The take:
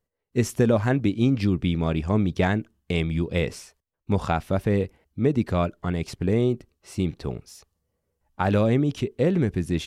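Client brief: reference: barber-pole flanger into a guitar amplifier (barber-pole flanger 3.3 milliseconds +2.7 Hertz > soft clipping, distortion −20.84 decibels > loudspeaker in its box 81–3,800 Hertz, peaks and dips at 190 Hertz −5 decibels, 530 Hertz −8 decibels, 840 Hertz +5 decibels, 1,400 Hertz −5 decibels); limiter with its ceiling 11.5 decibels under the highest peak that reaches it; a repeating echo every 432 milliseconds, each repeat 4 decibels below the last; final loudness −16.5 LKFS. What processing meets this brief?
brickwall limiter −21 dBFS
repeating echo 432 ms, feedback 63%, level −4 dB
barber-pole flanger 3.3 ms +2.7 Hz
soft clipping −22 dBFS
loudspeaker in its box 81–3,800 Hz, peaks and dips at 190 Hz −5 dB, 530 Hz −8 dB, 840 Hz +5 dB, 1,400 Hz −5 dB
level +19 dB

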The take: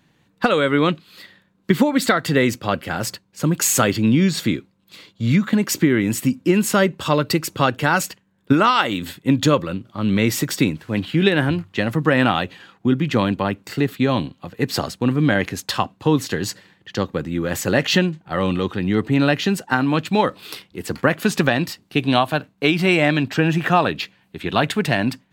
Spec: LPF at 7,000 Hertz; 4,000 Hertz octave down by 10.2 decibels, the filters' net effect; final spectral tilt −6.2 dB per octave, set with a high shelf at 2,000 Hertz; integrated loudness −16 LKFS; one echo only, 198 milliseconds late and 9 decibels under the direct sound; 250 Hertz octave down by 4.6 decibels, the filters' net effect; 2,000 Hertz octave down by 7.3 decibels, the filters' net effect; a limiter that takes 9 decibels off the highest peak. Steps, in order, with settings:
low-pass filter 7,000 Hz
parametric band 250 Hz −6 dB
high-shelf EQ 2,000 Hz −4.5 dB
parametric band 2,000 Hz −5.5 dB
parametric band 4,000 Hz −6.5 dB
brickwall limiter −14 dBFS
single-tap delay 198 ms −9 dB
level +10 dB

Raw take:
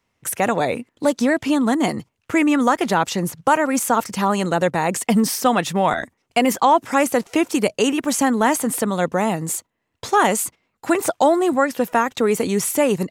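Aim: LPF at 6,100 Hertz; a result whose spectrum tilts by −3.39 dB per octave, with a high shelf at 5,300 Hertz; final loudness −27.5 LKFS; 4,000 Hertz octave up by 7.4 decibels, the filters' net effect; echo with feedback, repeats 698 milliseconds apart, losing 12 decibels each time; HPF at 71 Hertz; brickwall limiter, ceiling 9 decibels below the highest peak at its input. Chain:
high-pass filter 71 Hz
low-pass filter 6,100 Hz
parametric band 4,000 Hz +7.5 dB
high-shelf EQ 5,300 Hz +8 dB
brickwall limiter −10.5 dBFS
repeating echo 698 ms, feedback 25%, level −12 dB
level −6.5 dB

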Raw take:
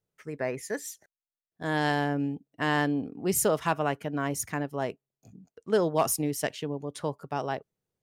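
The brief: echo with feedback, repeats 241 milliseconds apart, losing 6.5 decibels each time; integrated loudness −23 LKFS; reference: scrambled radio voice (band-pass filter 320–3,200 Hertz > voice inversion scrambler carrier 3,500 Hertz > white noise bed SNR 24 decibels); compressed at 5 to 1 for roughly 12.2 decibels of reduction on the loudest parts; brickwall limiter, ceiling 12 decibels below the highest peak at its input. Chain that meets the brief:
downward compressor 5 to 1, threshold −34 dBFS
brickwall limiter −33.5 dBFS
band-pass filter 320–3,200 Hz
repeating echo 241 ms, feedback 47%, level −6.5 dB
voice inversion scrambler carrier 3,500 Hz
white noise bed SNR 24 dB
level +20 dB

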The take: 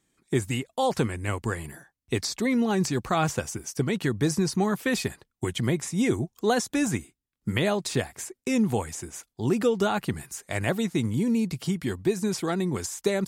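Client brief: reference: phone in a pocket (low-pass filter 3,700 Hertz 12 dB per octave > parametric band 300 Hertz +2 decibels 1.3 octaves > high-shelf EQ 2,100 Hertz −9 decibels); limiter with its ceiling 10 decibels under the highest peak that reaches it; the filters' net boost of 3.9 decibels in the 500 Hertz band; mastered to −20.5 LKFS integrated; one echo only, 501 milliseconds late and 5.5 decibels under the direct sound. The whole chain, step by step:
parametric band 500 Hz +4 dB
brickwall limiter −19 dBFS
low-pass filter 3,700 Hz 12 dB per octave
parametric band 300 Hz +2 dB 1.3 octaves
high-shelf EQ 2,100 Hz −9 dB
single-tap delay 501 ms −5.5 dB
level +8 dB

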